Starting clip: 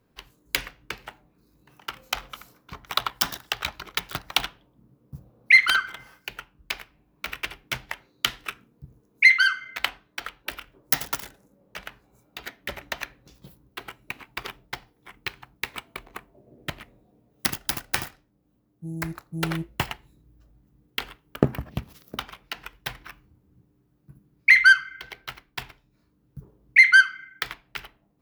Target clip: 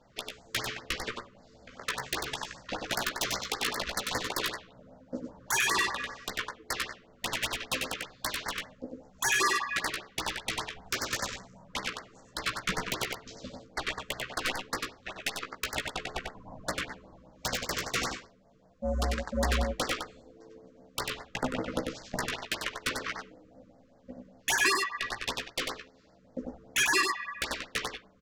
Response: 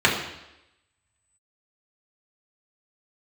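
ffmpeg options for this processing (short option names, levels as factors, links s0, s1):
-filter_complex "[0:a]lowshelf=f=180:g=-8,acompressor=threshold=0.0398:ratio=3,aresample=16000,asoftclip=type=hard:threshold=0.0794,aresample=44100,aeval=exprs='val(0)*sin(2*PI*390*n/s)':c=same,aeval=exprs='0.119*sin(PI/2*3.16*val(0)/0.119)':c=same,asplit=2[s0][s1];[s1]adelay=16,volume=0.562[s2];[s0][s2]amix=inputs=2:normalize=0,asplit=2[s3][s4];[s4]aecho=0:1:95:0.631[s5];[s3][s5]amix=inputs=2:normalize=0,afftfilt=real='re*(1-between(b*sr/1024,690*pow(3100/690,0.5+0.5*sin(2*PI*5.1*pts/sr))/1.41,690*pow(3100/690,0.5+0.5*sin(2*PI*5.1*pts/sr))*1.41))':imag='im*(1-between(b*sr/1024,690*pow(3100/690,0.5+0.5*sin(2*PI*5.1*pts/sr))/1.41,690*pow(3100/690,0.5+0.5*sin(2*PI*5.1*pts/sr))*1.41))':win_size=1024:overlap=0.75,volume=0.708"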